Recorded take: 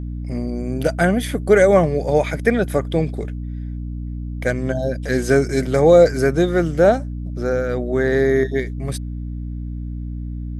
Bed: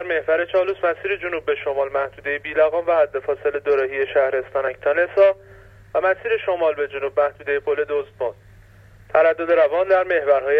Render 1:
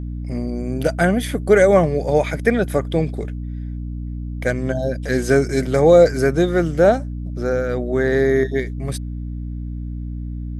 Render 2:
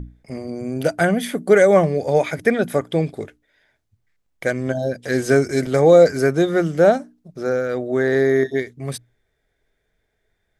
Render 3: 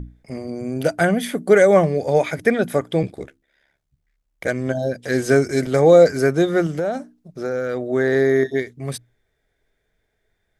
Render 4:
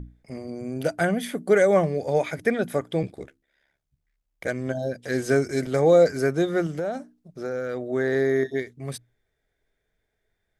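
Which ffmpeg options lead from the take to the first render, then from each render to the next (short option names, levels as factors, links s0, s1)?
-af anull
-af "bandreject=f=60:t=h:w=6,bandreject=f=120:t=h:w=6,bandreject=f=180:t=h:w=6,bandreject=f=240:t=h:w=6,bandreject=f=300:t=h:w=6"
-filter_complex "[0:a]asettb=1/sr,asplit=3[s0][s1][s2];[s0]atrim=end=3.024[s3];[s1]atrim=start=3.02:end=4.49,asetpts=PTS-STARTPTS,afade=t=in:d=0.004:c=qsin,afade=t=out:st=1.466:d=0.004:c=qsin,aeval=exprs='val(0)*sin(2*PI*35*n/s)':c=same[s4];[s2]atrim=start=4.486[s5];[s3][s4]acrossfade=d=0.004:c1=hsin:c2=qsin[s6];[s6][s5]acrossfade=d=0.004:c1=qsin:c2=hsin,asettb=1/sr,asplit=3[s7][s8][s9];[s7]atrim=end=6.664[s10];[s8]atrim=start=6.66:end=7.82,asetpts=PTS-STARTPTS,afade=t=in:d=0.004:c=qsin,afade=t=out:st=1.156:d=0.004:c=qsin,acompressor=threshold=0.112:ratio=6:attack=3.2:release=140:knee=1:detection=peak[s11];[s9]atrim=start=7.816[s12];[s10][s11]acrossfade=d=0.004:c1=hsin:c2=qsin[s13];[s13][s12]acrossfade=d=0.004:c1=qsin:c2=hsin"
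-af "volume=0.531"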